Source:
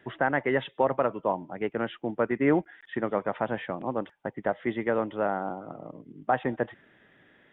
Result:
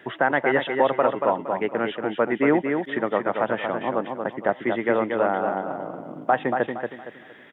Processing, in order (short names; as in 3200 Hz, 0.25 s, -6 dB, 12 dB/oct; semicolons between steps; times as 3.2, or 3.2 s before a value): in parallel at +1 dB: compressor, threshold -40 dBFS, peak gain reduction 20 dB; on the sum: HPF 260 Hz 6 dB/oct; feedback echo 0.232 s, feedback 33%, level -5.5 dB; gain +4 dB